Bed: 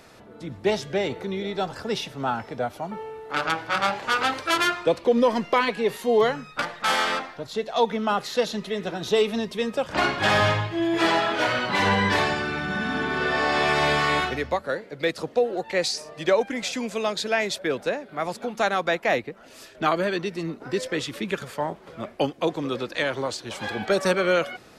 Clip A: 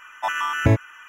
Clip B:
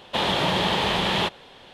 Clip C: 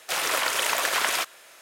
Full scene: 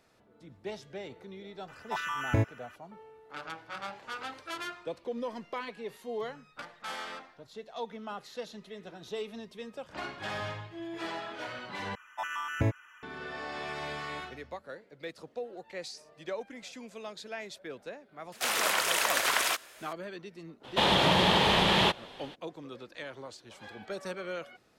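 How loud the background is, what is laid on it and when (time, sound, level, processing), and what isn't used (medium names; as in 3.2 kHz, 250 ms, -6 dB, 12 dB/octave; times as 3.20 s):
bed -16.5 dB
1.68 s: add A -9.5 dB
11.95 s: replace with A -11 dB
18.32 s: add C -3 dB
20.63 s: add B -1 dB, fades 0.02 s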